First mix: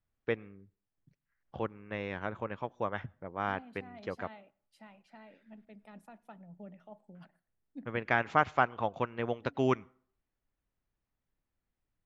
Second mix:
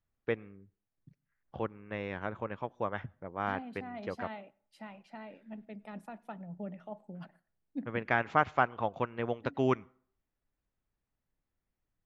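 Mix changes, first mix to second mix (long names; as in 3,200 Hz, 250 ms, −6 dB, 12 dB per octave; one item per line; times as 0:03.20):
second voice +7.5 dB
master: add high-shelf EQ 4,400 Hz −6 dB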